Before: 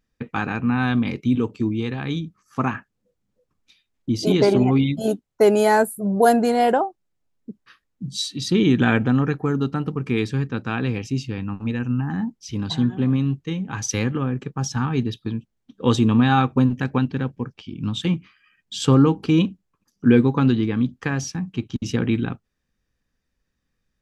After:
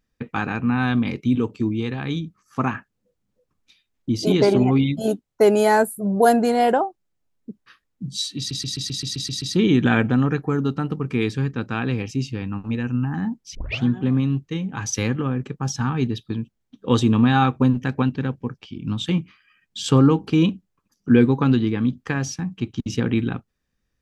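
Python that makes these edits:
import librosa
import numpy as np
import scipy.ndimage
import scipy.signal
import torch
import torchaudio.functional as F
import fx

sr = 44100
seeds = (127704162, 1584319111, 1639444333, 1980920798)

y = fx.edit(x, sr, fx.stutter(start_s=8.38, slice_s=0.13, count=9),
    fx.tape_start(start_s=12.51, length_s=0.29), tone=tone)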